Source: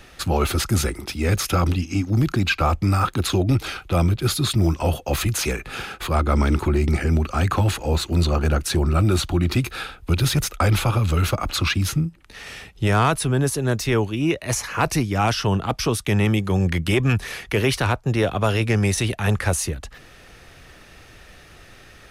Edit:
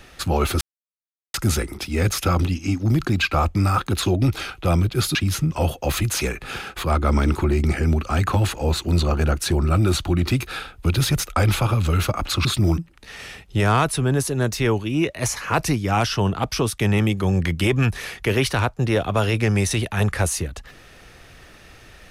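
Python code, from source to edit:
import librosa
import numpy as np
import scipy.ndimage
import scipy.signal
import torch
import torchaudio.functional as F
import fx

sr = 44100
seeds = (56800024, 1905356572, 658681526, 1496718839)

y = fx.edit(x, sr, fx.insert_silence(at_s=0.61, length_s=0.73),
    fx.swap(start_s=4.42, length_s=0.33, other_s=11.69, other_length_s=0.36), tone=tone)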